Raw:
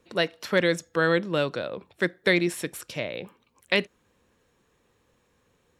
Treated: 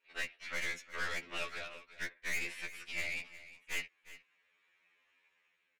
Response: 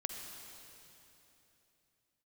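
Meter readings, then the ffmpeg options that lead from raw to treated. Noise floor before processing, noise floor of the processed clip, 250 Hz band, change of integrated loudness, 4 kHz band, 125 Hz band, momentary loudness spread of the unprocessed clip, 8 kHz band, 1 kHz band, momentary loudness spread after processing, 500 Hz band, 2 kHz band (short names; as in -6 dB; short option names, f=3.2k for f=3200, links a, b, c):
-69 dBFS, -78 dBFS, -27.5 dB, -13.5 dB, -12.5 dB, -24.0 dB, 11 LU, -6.5 dB, -14.0 dB, 13 LU, -25.0 dB, -9.5 dB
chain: -af "dynaudnorm=f=160:g=7:m=6dB,alimiter=limit=-9.5dB:level=0:latency=1:release=38,acontrast=67,afftfilt=real='hypot(re,im)*cos(2*PI*random(0))':imag='hypot(re,im)*sin(2*PI*random(1))':win_size=512:overlap=0.75,bandpass=f=2.3k:t=q:w=4:csg=0,aeval=exprs='(tanh(70.8*val(0)+0.5)-tanh(0.5))/70.8':c=same,aecho=1:1:359:0.158,afftfilt=real='re*2*eq(mod(b,4),0)':imag='im*2*eq(mod(b,4),0)':win_size=2048:overlap=0.75,volume=5dB"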